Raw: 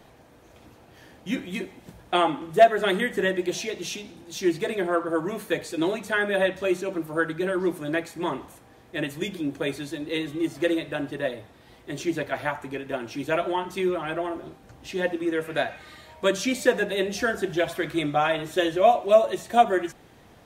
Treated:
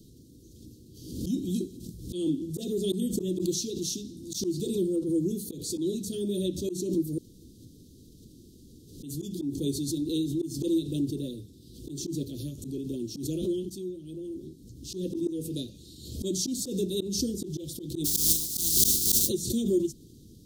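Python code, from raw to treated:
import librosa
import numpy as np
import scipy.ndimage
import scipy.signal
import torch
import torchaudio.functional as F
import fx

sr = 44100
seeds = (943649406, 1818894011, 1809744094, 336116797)

y = fx.spec_flatten(x, sr, power=0.1, at=(18.04, 19.27), fade=0.02)
y = fx.edit(y, sr, fx.room_tone_fill(start_s=7.18, length_s=1.85),
    fx.fade_in_from(start_s=13.7, length_s=1.29, floor_db=-17.5), tone=tone)
y = scipy.signal.sosfilt(scipy.signal.cheby2(4, 50, [700.0, 2200.0], 'bandstop', fs=sr, output='sos'), y)
y = fx.auto_swell(y, sr, attack_ms=142.0)
y = fx.pre_swell(y, sr, db_per_s=64.0)
y = y * librosa.db_to_amplitude(3.5)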